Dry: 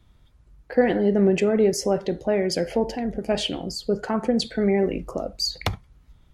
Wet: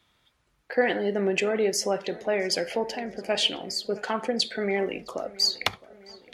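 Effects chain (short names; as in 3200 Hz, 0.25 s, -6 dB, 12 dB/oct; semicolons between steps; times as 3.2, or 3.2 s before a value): HPF 650 Hz 6 dB/oct; bell 2700 Hz +4.5 dB 2 oct; darkening echo 0.664 s, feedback 59%, low-pass 3000 Hz, level -20 dB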